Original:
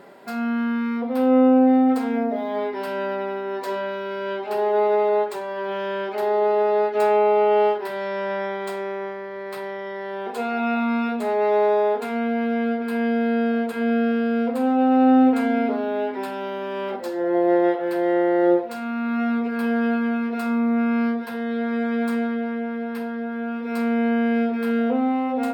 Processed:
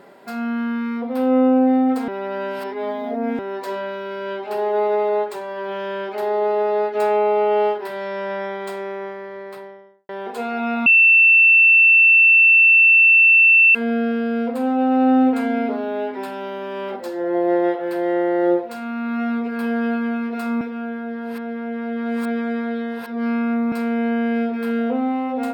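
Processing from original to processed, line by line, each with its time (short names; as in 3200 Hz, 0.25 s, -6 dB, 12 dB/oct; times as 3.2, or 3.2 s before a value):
2.08–3.39 reverse
9.25–10.09 studio fade out
10.86–13.75 bleep 2680 Hz -8.5 dBFS
20.61–23.72 reverse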